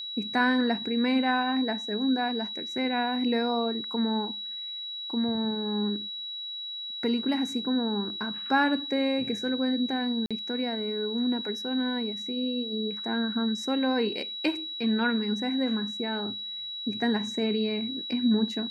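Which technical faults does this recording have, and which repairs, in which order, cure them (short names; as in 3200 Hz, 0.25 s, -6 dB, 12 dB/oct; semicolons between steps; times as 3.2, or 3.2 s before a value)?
tone 3900 Hz -34 dBFS
10.26–10.31 gap 46 ms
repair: notch 3900 Hz, Q 30; interpolate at 10.26, 46 ms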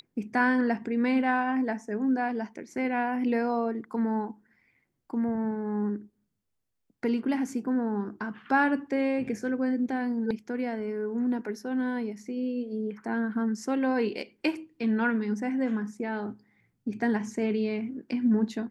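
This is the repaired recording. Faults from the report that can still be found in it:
none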